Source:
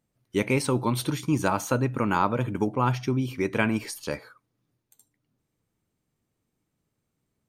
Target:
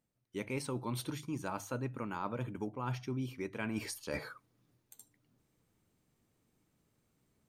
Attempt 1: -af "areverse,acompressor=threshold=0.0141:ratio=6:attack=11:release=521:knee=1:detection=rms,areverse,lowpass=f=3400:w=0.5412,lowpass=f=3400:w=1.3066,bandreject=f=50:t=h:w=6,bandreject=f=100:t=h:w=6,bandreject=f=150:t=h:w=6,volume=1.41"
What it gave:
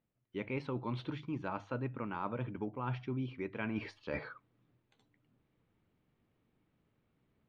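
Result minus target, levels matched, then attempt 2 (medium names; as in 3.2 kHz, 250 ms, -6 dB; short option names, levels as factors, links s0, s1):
4 kHz band -5.0 dB
-af "areverse,acompressor=threshold=0.0141:ratio=6:attack=11:release=521:knee=1:detection=rms,areverse,bandreject=f=50:t=h:w=6,bandreject=f=100:t=h:w=6,bandreject=f=150:t=h:w=6,volume=1.41"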